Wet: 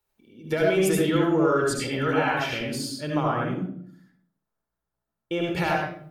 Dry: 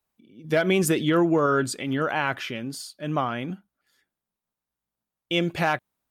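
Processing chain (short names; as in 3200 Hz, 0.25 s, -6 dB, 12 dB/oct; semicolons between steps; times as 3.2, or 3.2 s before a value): 3.23–5.47 resonant high shelf 1900 Hz -7.5 dB, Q 1.5; compressor, threshold -24 dBFS, peak gain reduction 7.5 dB; 1.64–2.53 dispersion lows, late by 64 ms, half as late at 1100 Hz; reverb RT60 0.60 s, pre-delay 68 ms, DRR -1 dB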